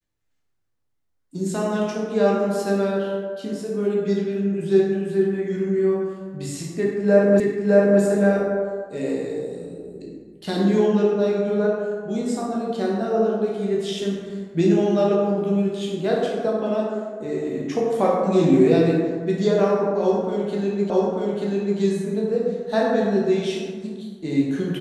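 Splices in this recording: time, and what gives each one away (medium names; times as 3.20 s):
7.40 s: repeat of the last 0.61 s
20.90 s: repeat of the last 0.89 s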